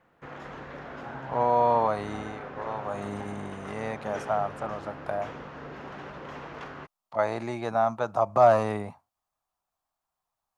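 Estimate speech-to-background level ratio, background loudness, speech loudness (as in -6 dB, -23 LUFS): 13.5 dB, -41.0 LUFS, -27.5 LUFS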